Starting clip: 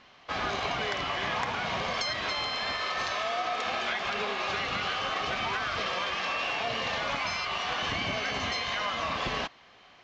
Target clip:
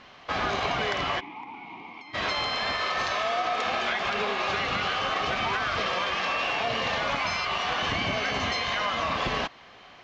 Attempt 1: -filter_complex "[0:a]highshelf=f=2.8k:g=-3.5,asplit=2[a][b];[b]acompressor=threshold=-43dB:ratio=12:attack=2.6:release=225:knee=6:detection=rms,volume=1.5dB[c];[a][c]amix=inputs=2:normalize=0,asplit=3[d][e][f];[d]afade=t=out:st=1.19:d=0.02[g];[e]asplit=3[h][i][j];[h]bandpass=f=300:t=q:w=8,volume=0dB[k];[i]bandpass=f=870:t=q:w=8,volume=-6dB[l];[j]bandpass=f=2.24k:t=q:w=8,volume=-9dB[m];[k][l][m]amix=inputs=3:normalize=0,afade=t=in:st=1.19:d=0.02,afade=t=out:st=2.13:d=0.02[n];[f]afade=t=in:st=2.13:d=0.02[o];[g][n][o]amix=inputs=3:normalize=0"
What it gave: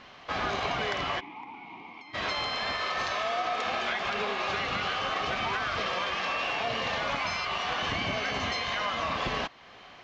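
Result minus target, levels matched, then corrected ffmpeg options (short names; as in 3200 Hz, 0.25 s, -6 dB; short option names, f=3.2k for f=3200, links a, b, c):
compressor: peak gain reduction +11 dB
-filter_complex "[0:a]highshelf=f=2.8k:g=-3.5,asplit=2[a][b];[b]acompressor=threshold=-31dB:ratio=12:attack=2.6:release=225:knee=6:detection=rms,volume=1.5dB[c];[a][c]amix=inputs=2:normalize=0,asplit=3[d][e][f];[d]afade=t=out:st=1.19:d=0.02[g];[e]asplit=3[h][i][j];[h]bandpass=f=300:t=q:w=8,volume=0dB[k];[i]bandpass=f=870:t=q:w=8,volume=-6dB[l];[j]bandpass=f=2.24k:t=q:w=8,volume=-9dB[m];[k][l][m]amix=inputs=3:normalize=0,afade=t=in:st=1.19:d=0.02,afade=t=out:st=2.13:d=0.02[n];[f]afade=t=in:st=2.13:d=0.02[o];[g][n][o]amix=inputs=3:normalize=0"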